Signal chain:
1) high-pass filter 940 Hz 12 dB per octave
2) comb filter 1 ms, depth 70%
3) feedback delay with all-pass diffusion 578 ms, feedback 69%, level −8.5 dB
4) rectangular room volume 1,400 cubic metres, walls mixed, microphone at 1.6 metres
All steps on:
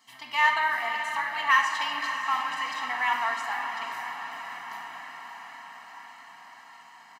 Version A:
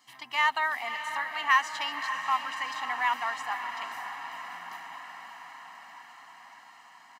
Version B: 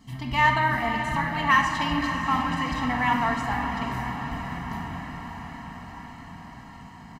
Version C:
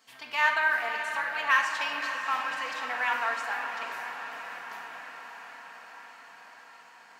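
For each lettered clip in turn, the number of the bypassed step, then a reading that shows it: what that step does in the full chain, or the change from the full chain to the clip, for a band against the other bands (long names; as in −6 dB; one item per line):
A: 4, change in integrated loudness −2.5 LU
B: 1, 250 Hz band +22.5 dB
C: 2, 500 Hz band +5.0 dB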